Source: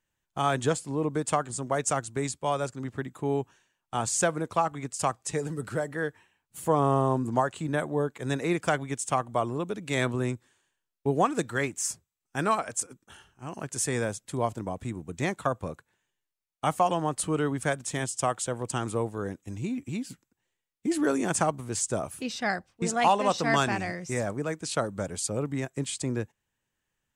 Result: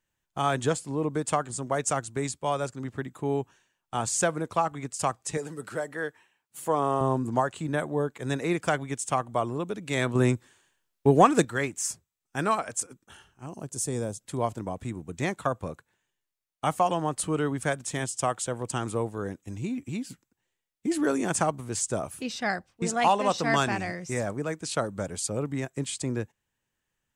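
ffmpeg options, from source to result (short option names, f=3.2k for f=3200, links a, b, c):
-filter_complex "[0:a]asettb=1/sr,asplit=3[a][b][c];[a]atrim=end=5.374[d];[b]atrim=start=5.37:end=7.01,asetpts=PTS-STARTPTS,afade=t=in:d=0.004:c=qsin,afade=t=out:st=1.636:d=0.004:c=qsin,highpass=f=350:p=1[e];[c]atrim=start=7.006[f];[d][e]acrossfade=d=0.004:c1=hsin:c2=qsin[g];[g][f]acrossfade=d=0.004:c1=qsin:c2=hsin,asettb=1/sr,asplit=3[h][i][j];[h]atrim=end=10.154[k];[i]atrim=start=10.15:end=11.45,asetpts=PTS-STARTPTS,afade=t=in:d=0.004:c=qsin,afade=t=out:st=1.296:d=0.004:c=qsin,acontrast=73[l];[j]atrim=start=11.446[m];[k][l]acrossfade=d=0.004:c1=hsin:c2=qsin[n];[n][m]acrossfade=d=0.004:c1=qsin:c2=hsin,asettb=1/sr,asplit=3[o][p][q];[o]atrim=end=13.464[r];[p]atrim=start=13.46:end=14.21,asetpts=PTS-STARTPTS,afade=t=in:d=0.004:c=qsin,afade=t=out:st=0.746:d=0.004:c=qsin,equalizer=f=1.9k:t=o:w=1.7:g=-14.5[s];[q]atrim=start=14.206[t];[r][s]acrossfade=d=0.004:c1=hsin:c2=qsin[u];[u][t]acrossfade=d=0.004:c1=qsin:c2=hsin"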